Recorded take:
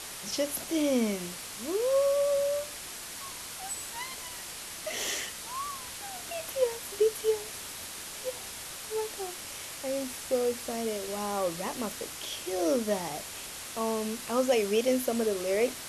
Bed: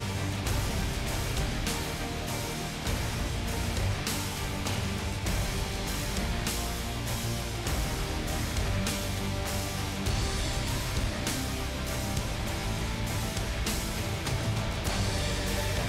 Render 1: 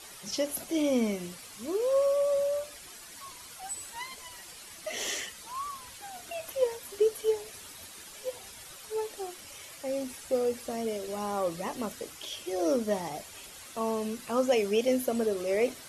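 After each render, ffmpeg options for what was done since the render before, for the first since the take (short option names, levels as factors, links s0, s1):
-af "afftdn=nr=10:nf=-42"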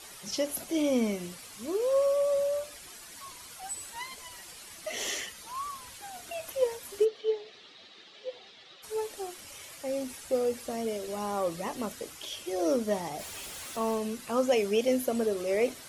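-filter_complex "[0:a]asettb=1/sr,asplit=3[s0][s1][s2];[s0]atrim=end=5.094[s3];[s1]atrim=start=5.09:end=5.58,asetpts=PTS-STARTPTS,afade=t=in:d=0.004:c=qsin,afade=t=out:st=0.486:d=0.004:c=qsin,bandreject=f=7900:w=12[s4];[s2]atrim=start=5.576[s5];[s3][s4]acrossfade=d=0.004:c1=hsin:c2=qsin[s6];[s6][s5]acrossfade=d=0.004:c1=qsin:c2=hsin,asplit=3[s7][s8][s9];[s7]afade=t=out:st=7.04:d=0.02[s10];[s8]highpass=250,equalizer=f=270:t=q:w=4:g=-4,equalizer=f=590:t=q:w=4:g=-4,equalizer=f=960:t=q:w=4:g=-9,equalizer=f=1500:t=q:w=4:g=-7,equalizer=f=2400:t=q:w=4:g=-4,equalizer=f=3800:t=q:w=4:g=4,lowpass=f=4100:w=0.5412,lowpass=f=4100:w=1.3066,afade=t=in:st=7.04:d=0.02,afade=t=out:st=8.82:d=0.02[s11];[s9]afade=t=in:st=8.82:d=0.02[s12];[s10][s11][s12]amix=inputs=3:normalize=0,asettb=1/sr,asplit=3[s13][s14][s15];[s13]atrim=end=13.194[s16];[s14]atrim=start=13.19:end=13.98,asetpts=PTS-STARTPTS,afade=t=in:d=0.004:c=qsin,afade=t=out:st=0.786:d=0.004:c=qsin,aeval=exprs='val(0)+0.5*0.00841*sgn(val(0))':c=same[s17];[s15]atrim=start=13.976[s18];[s16][s17]acrossfade=d=0.004:c1=hsin:c2=qsin[s19];[s19][s18]acrossfade=d=0.004:c1=qsin:c2=hsin"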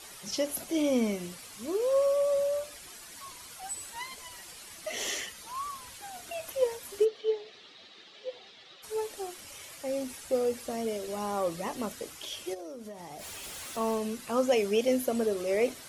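-filter_complex "[0:a]asplit=3[s0][s1][s2];[s0]afade=t=out:st=12.53:d=0.02[s3];[s1]acompressor=threshold=0.0112:ratio=12:attack=3.2:release=140:knee=1:detection=peak,afade=t=in:st=12.53:d=0.02,afade=t=out:st=13.43:d=0.02[s4];[s2]afade=t=in:st=13.43:d=0.02[s5];[s3][s4][s5]amix=inputs=3:normalize=0"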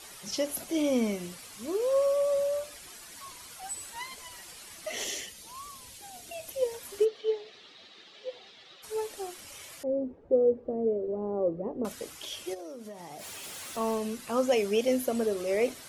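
-filter_complex "[0:a]asettb=1/sr,asplit=3[s0][s1][s2];[s0]atrim=end=5.044[s3];[s1]atrim=start=5.04:end=6.74,asetpts=PTS-STARTPTS,afade=t=in:d=0.004:c=qsin,afade=t=out:st=1.696:d=0.004:c=qsin,equalizer=f=1300:t=o:w=1.4:g=-9.5[s4];[s2]atrim=start=6.736[s5];[s3][s4]acrossfade=d=0.004:c1=hsin:c2=qsin[s6];[s6][s5]acrossfade=d=0.004:c1=qsin:c2=hsin,asettb=1/sr,asplit=3[s7][s8][s9];[s7]atrim=end=9.834[s10];[s8]atrim=start=9.83:end=11.85,asetpts=PTS-STARTPTS,afade=t=in:d=0.004:c=qsin,afade=t=out:st=2.016:d=0.004:c=qsin,lowpass=f=450:t=q:w=2.1[s11];[s9]atrim=start=11.846[s12];[s10][s11]acrossfade=d=0.004:c1=hsin:c2=qsin[s13];[s13][s12]acrossfade=d=0.004:c1=qsin:c2=hsin,asettb=1/sr,asplit=3[s14][s15][s16];[s14]atrim=end=12.604[s17];[s15]atrim=start=12.6:end=13.7,asetpts=PTS-STARTPTS,afade=t=in:d=0.004:c=qsin,afade=t=out:st=1.096:d=0.004:c=qsin,highpass=99[s18];[s16]atrim=start=13.696[s19];[s17][s18]acrossfade=d=0.004:c1=hsin:c2=qsin[s20];[s20][s19]acrossfade=d=0.004:c1=qsin:c2=hsin"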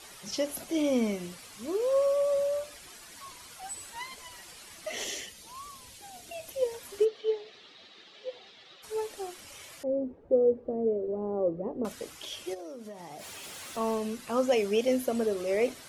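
-af "highshelf=f=8100:g=-5"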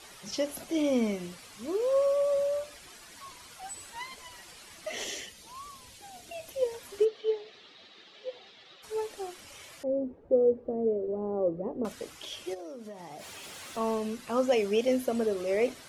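-af "highshelf=f=8500:g=-5.5"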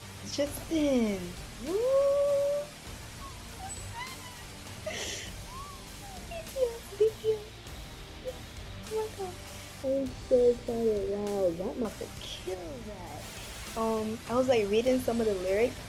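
-filter_complex "[1:a]volume=0.2[s0];[0:a][s0]amix=inputs=2:normalize=0"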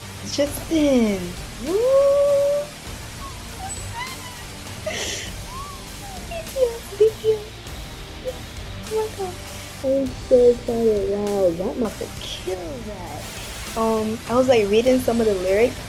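-af "volume=2.99"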